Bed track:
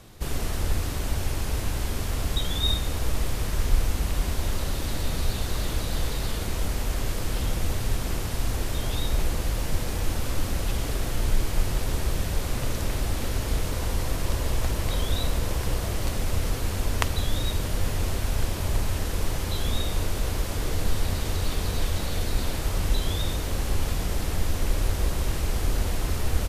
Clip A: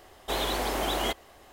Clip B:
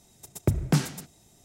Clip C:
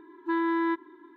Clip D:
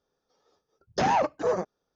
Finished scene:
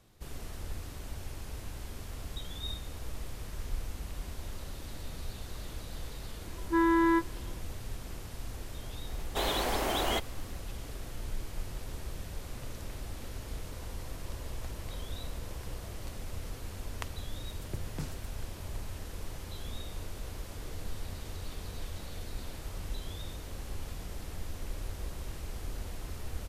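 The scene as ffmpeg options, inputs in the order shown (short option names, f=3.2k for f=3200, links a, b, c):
-filter_complex "[0:a]volume=-14dB[a];[3:a]asplit=2[b][c];[c]adelay=21,volume=-3dB[d];[b][d]amix=inputs=2:normalize=0,atrim=end=1.16,asetpts=PTS-STARTPTS,volume=-3dB,afade=t=in:d=0.004:c=hsin,afade=t=out:st=1.156:d=0.004:c=hsin,adelay=6440[e];[1:a]atrim=end=1.52,asetpts=PTS-STARTPTS,volume=-2dB,afade=t=in:d=0.004:c=hsin,afade=t=out:st=1.516:d=0.004:c=hsin,adelay=9070[f];[2:a]atrim=end=1.44,asetpts=PTS-STARTPTS,volume=-17.5dB,afade=t=in:d=0.004:c=hsin,afade=t=out:st=1.436:d=0.004:c=hsin,adelay=17260[g];[a][e][f][g]amix=inputs=4:normalize=0"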